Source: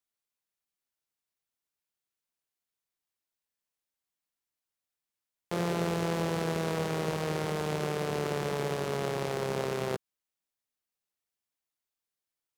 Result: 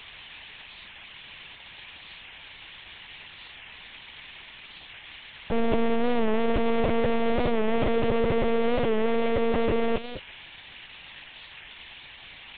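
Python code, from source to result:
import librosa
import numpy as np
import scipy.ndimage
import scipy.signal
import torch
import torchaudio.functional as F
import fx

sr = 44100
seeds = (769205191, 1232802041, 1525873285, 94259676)

y = x + 0.5 * 10.0 ** (-26.5 / 20.0) * np.diff(np.sign(x), prepend=np.sign(x[:1]))
y = scipy.signal.sosfilt(scipy.signal.butter(4, 3000.0, 'lowpass', fs=sr, output='sos'), y)
y = fx.peak_eq(y, sr, hz=1300.0, db=-7.5, octaves=0.71)
y = y + 10.0 ** (-17.5 / 20.0) * np.pad(y, (int(221 * sr / 1000.0), 0))[:len(y)]
y = fx.leveller(y, sr, passes=3)
y = fx.low_shelf(y, sr, hz=110.0, db=-5.5)
y = fx.lpc_monotone(y, sr, seeds[0], pitch_hz=230.0, order=10)
y = fx.record_warp(y, sr, rpm=45.0, depth_cents=100.0)
y = y * 10.0 ** (3.0 / 20.0)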